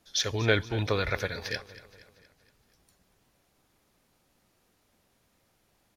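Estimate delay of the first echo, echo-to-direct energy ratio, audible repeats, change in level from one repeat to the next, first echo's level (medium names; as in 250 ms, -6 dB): 235 ms, -16.0 dB, 4, -5.5 dB, -17.5 dB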